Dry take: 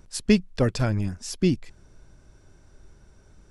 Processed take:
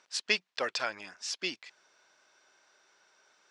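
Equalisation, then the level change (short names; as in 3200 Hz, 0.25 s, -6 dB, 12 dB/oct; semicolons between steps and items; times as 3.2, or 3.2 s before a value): BPF 690–5200 Hz; air absorption 69 m; tilt +3 dB/oct; 0.0 dB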